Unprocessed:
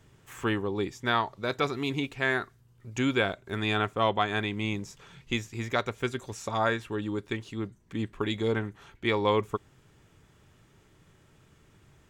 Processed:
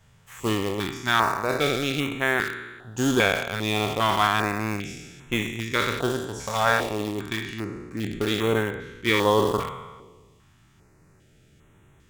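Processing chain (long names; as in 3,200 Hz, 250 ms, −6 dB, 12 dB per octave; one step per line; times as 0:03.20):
peak hold with a decay on every bin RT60 1.36 s
in parallel at −3.5 dB: centre clipping without the shift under −22.5 dBFS
on the sum: notch on a step sequencer 2.5 Hz 330–4,800 Hz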